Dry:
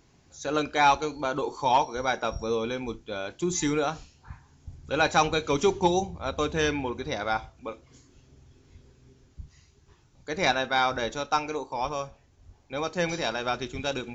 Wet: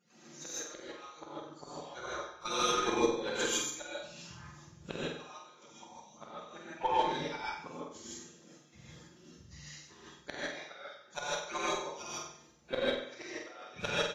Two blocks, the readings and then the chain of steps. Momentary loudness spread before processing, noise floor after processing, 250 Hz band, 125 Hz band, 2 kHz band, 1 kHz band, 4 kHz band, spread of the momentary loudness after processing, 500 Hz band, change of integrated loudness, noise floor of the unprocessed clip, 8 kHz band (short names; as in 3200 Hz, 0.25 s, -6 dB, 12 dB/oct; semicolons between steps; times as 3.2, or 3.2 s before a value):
13 LU, -60 dBFS, -10.0 dB, -13.5 dB, -9.5 dB, -10.5 dB, -5.5 dB, 22 LU, -9.0 dB, -9.0 dB, -61 dBFS, n/a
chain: median-filter separation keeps percussive; HPF 91 Hz 24 dB/oct; notches 50/100/150/200/250/300/350/400 Hz; comb 5.7 ms, depth 41%; flipped gate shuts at -24 dBFS, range -35 dB; step gate ".xx..x.." 153 bpm -12 dB; on a send: flutter echo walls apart 8.1 m, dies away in 0.64 s; on the sum: non-linear reverb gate 0.18 s rising, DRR -7.5 dB; added harmonics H 3 -29 dB, 8 -30 dB, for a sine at -18.5 dBFS; gain +5 dB; Vorbis 32 kbps 48000 Hz